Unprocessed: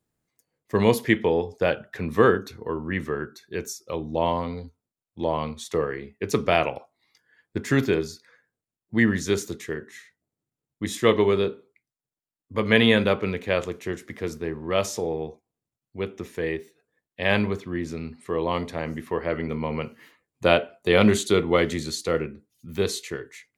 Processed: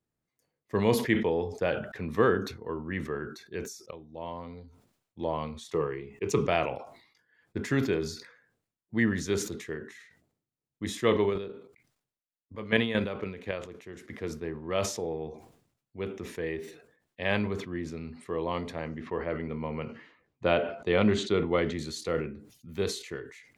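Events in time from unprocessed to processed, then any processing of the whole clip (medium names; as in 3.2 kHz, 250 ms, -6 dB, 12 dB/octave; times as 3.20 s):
3.91–5.20 s: fade in, from -18.5 dB
5.74–6.47 s: rippled EQ curve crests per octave 0.71, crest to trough 8 dB
11.29–14.03 s: square tremolo 7.4 Hz -> 3 Hz, depth 65%, duty 20%
18.88–21.79 s: distance through air 130 m
whole clip: treble shelf 6.5 kHz -8 dB; decay stretcher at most 88 dB/s; trim -6 dB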